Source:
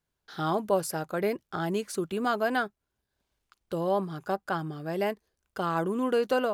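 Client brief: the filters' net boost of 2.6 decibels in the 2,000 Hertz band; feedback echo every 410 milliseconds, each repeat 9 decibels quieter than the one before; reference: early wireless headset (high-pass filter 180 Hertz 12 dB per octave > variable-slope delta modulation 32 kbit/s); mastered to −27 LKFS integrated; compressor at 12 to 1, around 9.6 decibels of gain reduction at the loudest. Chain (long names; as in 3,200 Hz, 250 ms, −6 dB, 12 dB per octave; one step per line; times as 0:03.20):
parametric band 2,000 Hz +4 dB
downward compressor 12 to 1, threshold −30 dBFS
high-pass filter 180 Hz 12 dB per octave
repeating echo 410 ms, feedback 35%, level −9 dB
variable-slope delta modulation 32 kbit/s
level +9.5 dB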